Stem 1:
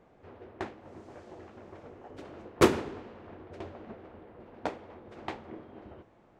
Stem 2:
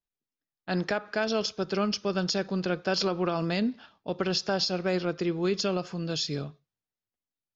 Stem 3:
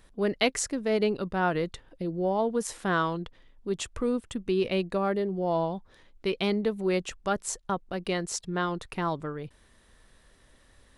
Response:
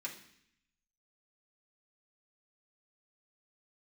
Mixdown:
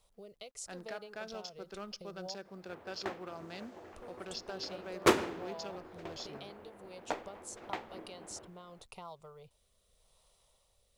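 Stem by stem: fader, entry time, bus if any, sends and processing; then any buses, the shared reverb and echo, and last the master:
0.0 dB, 2.45 s, no send, no processing
−13.5 dB, 0.00 s, send −18 dB, adaptive Wiener filter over 15 samples
−2.5 dB, 0.00 s, muted 0:02.35–0:03.92, no send, downward compressor 16 to 1, threshold −33 dBFS, peak gain reduction 14.5 dB; rotating-speaker cabinet horn 0.85 Hz; phaser with its sweep stopped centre 700 Hz, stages 4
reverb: on, RT60 0.65 s, pre-delay 3 ms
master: low-shelf EQ 340 Hz −10 dB; log-companded quantiser 8 bits

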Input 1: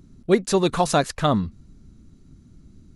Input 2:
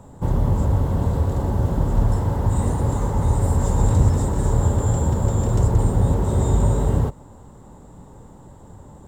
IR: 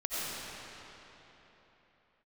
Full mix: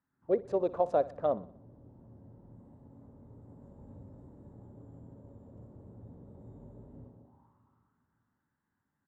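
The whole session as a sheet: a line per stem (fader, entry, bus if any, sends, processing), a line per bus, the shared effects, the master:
−2.0 dB, 0.00 s, no send, echo send −19 dB, adaptive Wiener filter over 15 samples; downward expander −43 dBFS
−14.0 dB, 0.00 s, send −7 dB, echo send −3 dB, drawn EQ curve 270 Hz 0 dB, 500 Hz −21 dB, 1,700 Hz −11 dB; automatic ducking −9 dB, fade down 0.35 s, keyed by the first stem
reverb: on, RT60 3.8 s, pre-delay 50 ms
echo: repeating echo 61 ms, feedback 48%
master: envelope filter 550–1,800 Hz, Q 3.6, down, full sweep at −27.5 dBFS

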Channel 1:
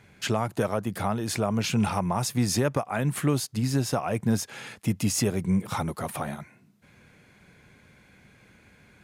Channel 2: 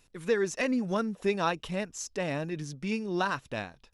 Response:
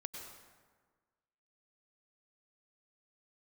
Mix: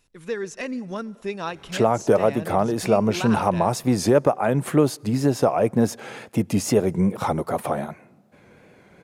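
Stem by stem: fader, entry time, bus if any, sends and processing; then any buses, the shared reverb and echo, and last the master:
−2.0 dB, 1.50 s, send −23 dB, parametric band 500 Hz +12.5 dB 2.4 octaves; tape wow and flutter 58 cents
−2.5 dB, 0.00 s, send −16.5 dB, no processing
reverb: on, RT60 1.5 s, pre-delay 88 ms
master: no processing

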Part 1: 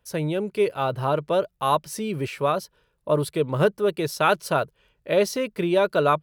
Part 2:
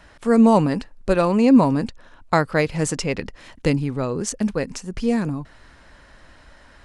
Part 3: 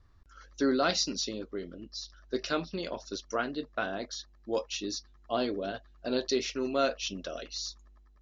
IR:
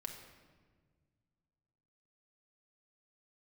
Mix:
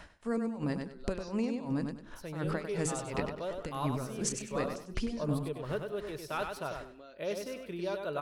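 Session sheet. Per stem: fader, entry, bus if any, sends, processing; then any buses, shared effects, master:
−16.0 dB, 2.10 s, no bus, no send, echo send −5.5 dB, no processing
+0.5 dB, 0.00 s, bus A, no send, echo send −12.5 dB, hum removal 52.58 Hz, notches 10; brickwall limiter −15 dBFS, peak gain reduction 11.5 dB; tremolo with a sine in dB 2.8 Hz, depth 25 dB
−13.0 dB, 0.25 s, bus A, no send, no echo send, low-pass that shuts in the quiet parts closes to 770 Hz, open at −28 dBFS; downward compressor 12 to 1, threshold −36 dBFS, peak gain reduction 14.5 dB
bus A: 0.0 dB, downward compressor 4 to 1, threshold −30 dBFS, peak gain reduction 9 dB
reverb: not used
echo: repeating echo 98 ms, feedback 26%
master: no processing

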